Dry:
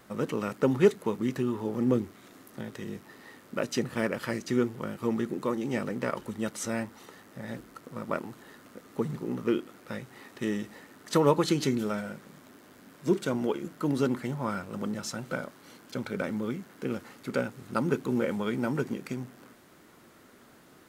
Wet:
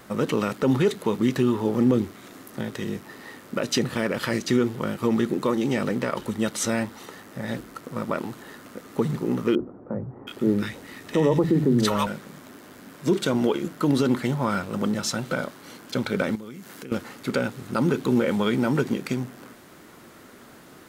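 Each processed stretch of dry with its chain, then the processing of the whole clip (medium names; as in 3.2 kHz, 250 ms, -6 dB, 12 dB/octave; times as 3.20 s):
9.55–12.07 s: bass shelf 180 Hz +7.5 dB + three bands offset in time mids, lows, highs 50/720 ms, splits 160/1000 Hz
16.35–16.92 s: high-pass 60 Hz + treble shelf 2.8 kHz +9 dB + compression 4:1, threshold -46 dBFS
whole clip: dynamic bell 3.7 kHz, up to +5 dB, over -56 dBFS, Q 2; peak limiter -19.5 dBFS; trim +8 dB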